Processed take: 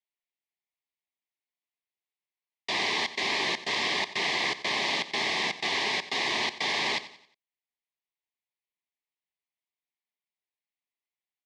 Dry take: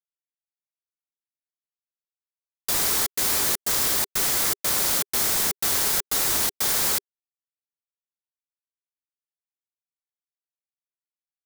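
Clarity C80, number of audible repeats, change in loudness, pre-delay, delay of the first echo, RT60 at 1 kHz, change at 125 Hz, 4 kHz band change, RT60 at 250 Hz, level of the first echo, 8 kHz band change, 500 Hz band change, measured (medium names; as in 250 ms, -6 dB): no reverb, 3, -6.5 dB, no reverb, 90 ms, no reverb, -7.5 dB, 0.0 dB, no reverb, -15.0 dB, -18.0 dB, -0.5 dB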